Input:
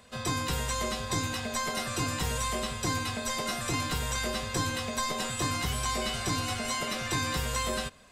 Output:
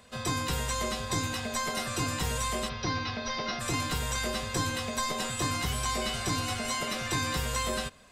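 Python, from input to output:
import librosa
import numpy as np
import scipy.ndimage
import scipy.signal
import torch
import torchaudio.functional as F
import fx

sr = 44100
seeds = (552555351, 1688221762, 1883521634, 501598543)

y = fx.cheby1_lowpass(x, sr, hz=5800.0, order=6, at=(2.68, 3.59), fade=0.02)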